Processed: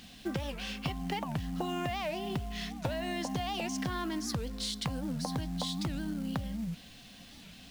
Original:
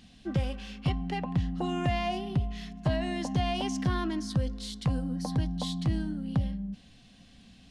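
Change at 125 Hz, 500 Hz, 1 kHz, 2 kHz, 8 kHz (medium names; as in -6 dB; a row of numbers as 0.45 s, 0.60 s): -8.0 dB, -3.0 dB, -2.5 dB, -0.5 dB, +3.0 dB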